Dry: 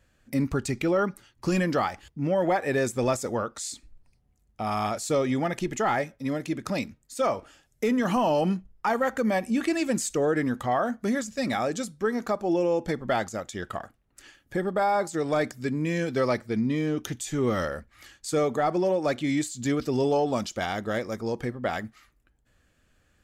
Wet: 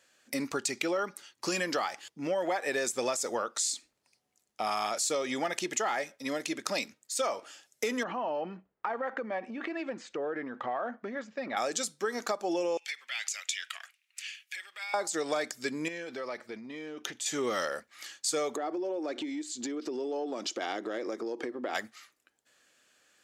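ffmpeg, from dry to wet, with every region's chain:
ffmpeg -i in.wav -filter_complex "[0:a]asettb=1/sr,asplit=3[link_01][link_02][link_03];[link_01]atrim=end=8.034[link_04];[link_02]atrim=start=8.03:end=11.57,asetpts=PTS-STARTPTS,afade=type=in:duration=0.004:curve=qsin,afade=type=out:start_time=3.536:duration=0.004:curve=qsin,lowpass=2300,aemphasis=mode=reproduction:type=75fm,acompressor=threshold=-28dB:ratio=10:attack=3.2:release=140:knee=1:detection=peak[link_05];[link_03]atrim=start=11.566[link_06];[link_04][link_05]acrossfade=duration=0.004:curve1=hsin:curve2=qsin[link_07];[link_07][link_06]acrossfade=duration=0.004:curve1=qsin:curve2=hsin,asettb=1/sr,asplit=3[link_08][link_09][link_10];[link_08]atrim=end=12.774[link_11];[link_09]atrim=start=12.77:end=14.94,asetpts=PTS-STARTPTS,afade=type=in:duration=0.004:curve=qsin,afade=type=out:start_time=2.166:duration=0.004:curve=qsin,acompressor=threshold=-30dB:ratio=10:attack=3.2:release=140:knee=1:detection=peak,highpass=frequency=2400:width_type=q:width=4.4[link_12];[link_10]atrim=start=14.936[link_13];[link_11][link_12]acrossfade=duration=0.004:curve1=hsin:curve2=qsin[link_14];[link_14][link_13]acrossfade=duration=0.004:curve1=qsin:curve2=hsin,asettb=1/sr,asplit=3[link_15][link_16][link_17];[link_15]atrim=end=15.884[link_18];[link_16]atrim=start=15.88:end=17.26,asetpts=PTS-STARTPTS,afade=type=in:duration=0.004:curve=qsin,afade=type=out:start_time=1.376:duration=0.004:curve=qsin,bass=frequency=250:gain=-2,treble=frequency=4000:gain=-11,acompressor=threshold=-32dB:ratio=12:attack=3.2:release=140:knee=1:detection=peak[link_19];[link_17]atrim=start=17.256[link_20];[link_18][link_19]acrossfade=duration=0.004:curve1=hsin:curve2=qsin[link_21];[link_21][link_20]acrossfade=duration=0.004:curve1=qsin:curve2=hsin,asettb=1/sr,asplit=3[link_22][link_23][link_24];[link_22]atrim=end=18.564[link_25];[link_23]atrim=start=18.56:end=21.75,asetpts=PTS-STARTPTS,afade=type=in:duration=0.004:curve=qsin,afade=type=out:start_time=3.186:duration=0.004:curve=qsin,highpass=frequency=320:width_type=q:width=3.4,aemphasis=mode=reproduction:type=bsi,acompressor=threshold=-27dB:ratio=16:attack=3.2:release=140:knee=1:detection=peak[link_26];[link_24]atrim=start=21.746[link_27];[link_25][link_26]acrossfade=duration=0.004:curve1=hsin:curve2=qsin[link_28];[link_28][link_27]acrossfade=duration=0.004:curve1=qsin:curve2=hsin,highpass=390,equalizer=frequency=5800:width_type=o:width=2.3:gain=8.5,acompressor=threshold=-27dB:ratio=6" out.wav

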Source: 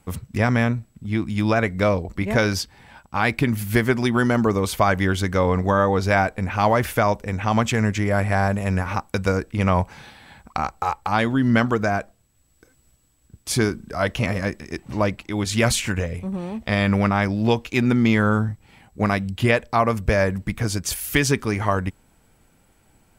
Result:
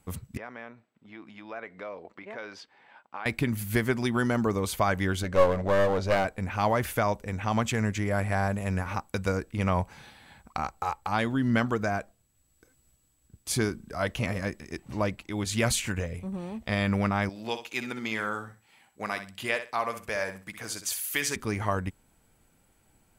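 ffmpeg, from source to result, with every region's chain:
ffmpeg -i in.wav -filter_complex "[0:a]asettb=1/sr,asplit=3[link_01][link_02][link_03];[link_01]atrim=end=0.374[link_04];[link_02]atrim=start=0.37:end=3.26,asetpts=PTS-STARTPTS,afade=type=in:duration=0.004:curve=qsin,afade=type=out:start_time=2.886:duration=0.004:curve=qsin,acompressor=threshold=-24dB:ratio=6:attack=3.2:release=140:knee=1:detection=peak,highpass=430,lowpass=2800[link_05];[link_03]atrim=start=3.256[link_06];[link_04][link_05]acrossfade=duration=0.004:curve1=hsin:curve2=qsin[link_07];[link_07][link_06]acrossfade=duration=0.004:curve1=qsin:curve2=hsin,asettb=1/sr,asplit=3[link_08][link_09][link_10];[link_08]atrim=end=5.234[link_11];[link_09]atrim=start=5.23:end=6.25,asetpts=PTS-STARTPTS,afade=type=in:duration=0.004:curve=qsin,afade=type=out:start_time=1.016:duration=0.004:curve=qsin,lowpass=6100,equalizer=frequency=560:width_type=o:width=0.23:gain=14.5,aeval=exprs='clip(val(0),-1,0.1)':channel_layout=same[link_12];[link_10]atrim=start=6.246[link_13];[link_11][link_12]acrossfade=duration=0.004:curve1=hsin:curve2=qsin[link_14];[link_14][link_13]acrossfade=duration=0.004:curve1=qsin:curve2=hsin,asettb=1/sr,asplit=3[link_15][link_16][link_17];[link_15]atrim=end=17.294[link_18];[link_16]atrim=start=17.29:end=21.36,asetpts=PTS-STARTPTS,afade=type=in:duration=0.004:curve=qsin,afade=type=out:start_time=4.066:duration=0.004:curve=qsin,highpass=frequency=860:poles=1,aecho=1:1:63|126|189:0.316|0.0696|0.0153,atrim=end_sample=179487[link_19];[link_17]atrim=start=21.356[link_20];[link_18][link_19]acrossfade=duration=0.004:curve1=hsin:curve2=qsin[link_21];[link_21][link_20]acrossfade=duration=0.004:curve1=qsin:curve2=hsin,equalizer=frequency=12000:width=0.41:gain=3.5,bandreject=frequency=5400:width=21,volume=-7dB" out.wav

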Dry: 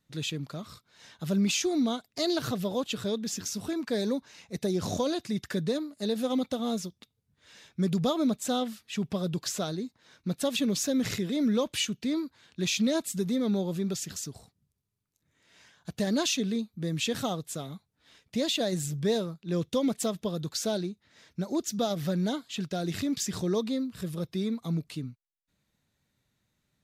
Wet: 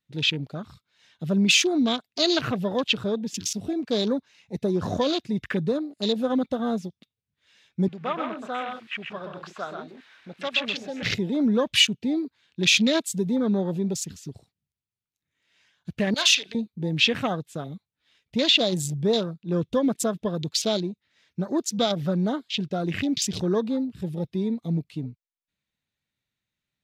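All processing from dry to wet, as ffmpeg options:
ffmpeg -i in.wav -filter_complex "[0:a]asettb=1/sr,asplit=3[link_01][link_02][link_03];[link_01]atrim=end=7.884[link_04];[link_02]atrim=start=7.88:end=11.03,asetpts=PTS-STARTPTS,afade=type=in:duration=0.004:curve=qsin,afade=type=out:start_time=3.146:duration=0.004:curve=qsin,aeval=exprs='val(0)+0.5*0.01*sgn(val(0))':channel_layout=same,bandpass=frequency=1500:width_type=q:width=0.95,aecho=1:1:127|158:0.531|0.316,atrim=end_sample=138915[link_05];[link_03]atrim=start=11.026[link_06];[link_04][link_05]acrossfade=duration=0.004:curve1=hsin:curve2=qsin[link_07];[link_07][link_06]acrossfade=duration=0.004:curve1=qsin:curve2=hsin,asettb=1/sr,asplit=3[link_08][link_09][link_10];[link_08]atrim=end=16.144[link_11];[link_09]atrim=start=16.14:end=16.55,asetpts=PTS-STARTPTS,afade=type=in:duration=0.004:curve=qsin,afade=type=out:start_time=0.406:duration=0.004:curve=qsin,highpass=910,asplit=2[link_12][link_13];[link_13]adelay=36,volume=-11dB[link_14];[link_12][link_14]amix=inputs=2:normalize=0,atrim=end_sample=18081[link_15];[link_10]atrim=start=16.546[link_16];[link_11][link_15]acrossfade=duration=0.004:curve1=hsin:curve2=qsin[link_17];[link_17][link_16]acrossfade=duration=0.004:curve1=qsin:curve2=hsin,afwtdn=0.01,equalizer=frequency=2700:width_type=o:width=1.6:gain=9.5,volume=4dB" out.wav

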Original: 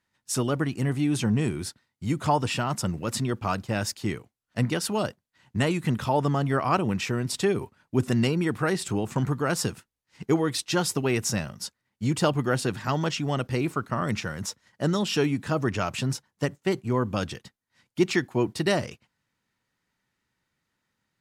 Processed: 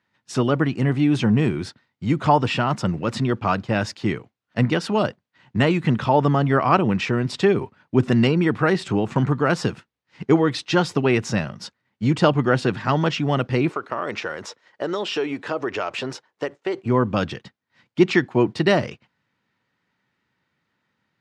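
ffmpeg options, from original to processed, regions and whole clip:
ffmpeg -i in.wav -filter_complex "[0:a]asettb=1/sr,asplit=3[link_01][link_02][link_03];[link_01]atrim=end=13.694[link_04];[link_02]atrim=start=13.69:end=16.86,asetpts=PTS-STARTPTS,afade=type=in:duration=0.004:curve=qsin,afade=type=out:start_time=3.166:duration=0.004:curve=qsin,lowshelf=frequency=270:width_type=q:width=1.5:gain=-13,acompressor=threshold=-28dB:ratio=3:attack=3.2:release=140:knee=1:detection=peak[link_05];[link_03]atrim=start=16.856[link_06];[link_04][link_05]acrossfade=duration=0.004:curve1=hsin:curve2=qsin[link_07];[link_07][link_06]acrossfade=duration=0.004:curve1=qsin:curve2=hsin,highpass=100,deesser=0.45,lowpass=3700,volume=6.5dB" out.wav

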